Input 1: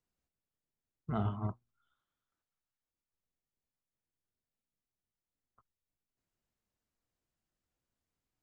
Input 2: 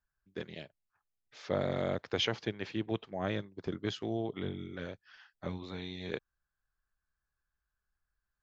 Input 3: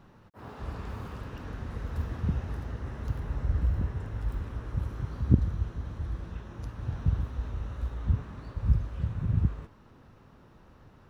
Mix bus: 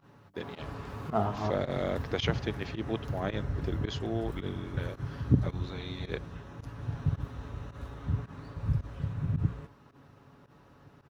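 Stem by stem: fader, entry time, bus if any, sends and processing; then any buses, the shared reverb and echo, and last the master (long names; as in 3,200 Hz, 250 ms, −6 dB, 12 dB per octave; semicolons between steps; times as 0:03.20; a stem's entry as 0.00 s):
−0.5 dB, 0.00 s, no send, parametric band 660 Hz +12.5 dB 1.9 octaves
+1.5 dB, 0.00 s, no send, no processing
−0.5 dB, 0.00 s, no send, high-pass filter 65 Hz; comb filter 7.1 ms, depth 43%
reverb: not used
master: mains-hum notches 60/120/180 Hz; fake sidechain pumping 109 BPM, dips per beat 1, −18 dB, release 77 ms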